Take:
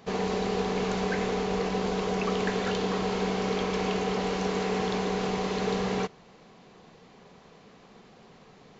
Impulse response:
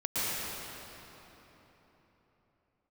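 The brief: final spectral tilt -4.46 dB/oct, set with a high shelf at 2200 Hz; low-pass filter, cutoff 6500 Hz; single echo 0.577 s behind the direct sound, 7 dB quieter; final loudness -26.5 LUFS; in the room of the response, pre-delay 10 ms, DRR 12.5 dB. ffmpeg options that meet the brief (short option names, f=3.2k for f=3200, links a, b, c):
-filter_complex "[0:a]lowpass=6.5k,highshelf=f=2.2k:g=8.5,aecho=1:1:577:0.447,asplit=2[a][b];[1:a]atrim=start_sample=2205,adelay=10[c];[b][c]afir=irnorm=-1:irlink=0,volume=-22.5dB[d];[a][d]amix=inputs=2:normalize=0"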